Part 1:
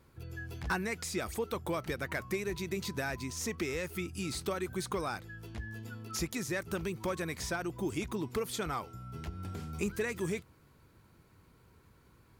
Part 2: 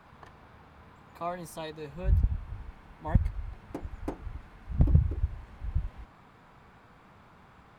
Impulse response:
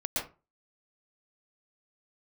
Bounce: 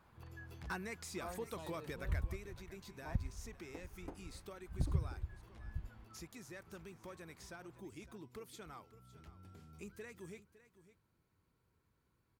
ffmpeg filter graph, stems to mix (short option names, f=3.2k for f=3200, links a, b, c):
-filter_complex "[0:a]volume=-9.5dB,afade=t=out:st=1.92:d=0.56:silence=0.446684,asplit=2[a][b];[b]volume=-16dB[c];[1:a]volume=-13dB[d];[c]aecho=0:1:558:1[e];[a][d][e]amix=inputs=3:normalize=0"